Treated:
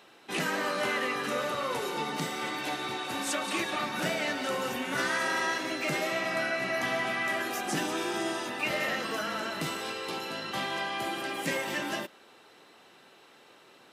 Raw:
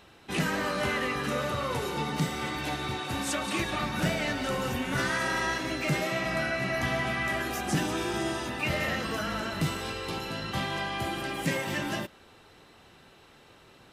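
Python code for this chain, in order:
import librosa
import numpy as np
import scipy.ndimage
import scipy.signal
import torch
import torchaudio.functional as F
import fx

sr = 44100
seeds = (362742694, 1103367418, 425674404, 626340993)

y = scipy.signal.sosfilt(scipy.signal.butter(2, 270.0, 'highpass', fs=sr, output='sos'), x)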